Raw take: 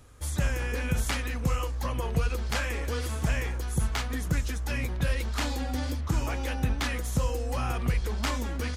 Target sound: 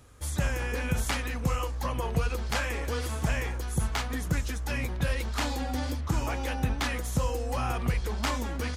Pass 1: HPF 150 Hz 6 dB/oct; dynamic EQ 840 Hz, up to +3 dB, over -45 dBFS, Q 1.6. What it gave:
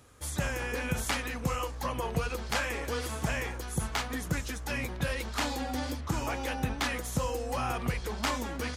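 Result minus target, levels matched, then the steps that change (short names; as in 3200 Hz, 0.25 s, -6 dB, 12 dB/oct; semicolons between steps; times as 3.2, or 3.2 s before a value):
125 Hz band -3.0 dB
change: HPF 40 Hz 6 dB/oct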